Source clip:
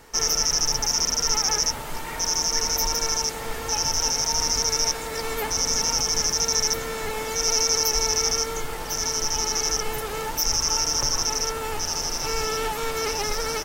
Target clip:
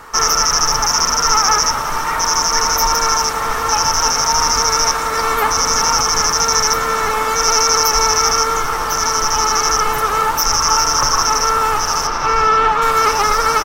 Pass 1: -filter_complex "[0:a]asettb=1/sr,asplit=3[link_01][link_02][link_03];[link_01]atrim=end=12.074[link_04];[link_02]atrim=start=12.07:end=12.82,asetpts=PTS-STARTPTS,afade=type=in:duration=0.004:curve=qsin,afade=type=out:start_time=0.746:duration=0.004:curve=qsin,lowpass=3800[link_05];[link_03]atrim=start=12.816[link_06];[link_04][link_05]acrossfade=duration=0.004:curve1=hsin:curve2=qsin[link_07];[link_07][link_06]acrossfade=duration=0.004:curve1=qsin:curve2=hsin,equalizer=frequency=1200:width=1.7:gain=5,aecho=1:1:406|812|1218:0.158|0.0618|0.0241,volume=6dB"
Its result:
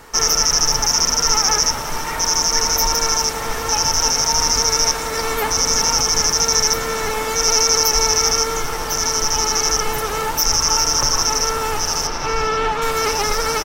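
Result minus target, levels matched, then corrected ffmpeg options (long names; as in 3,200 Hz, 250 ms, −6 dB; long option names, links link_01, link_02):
1,000 Hz band −5.5 dB
-filter_complex "[0:a]asettb=1/sr,asplit=3[link_01][link_02][link_03];[link_01]atrim=end=12.074[link_04];[link_02]atrim=start=12.07:end=12.82,asetpts=PTS-STARTPTS,afade=type=in:duration=0.004:curve=qsin,afade=type=out:start_time=0.746:duration=0.004:curve=qsin,lowpass=3800[link_05];[link_03]atrim=start=12.816[link_06];[link_04][link_05]acrossfade=duration=0.004:curve1=hsin:curve2=qsin[link_07];[link_07][link_06]acrossfade=duration=0.004:curve1=qsin:curve2=hsin,equalizer=frequency=1200:width=1.7:gain=16.5,aecho=1:1:406|812|1218:0.158|0.0618|0.0241,volume=6dB"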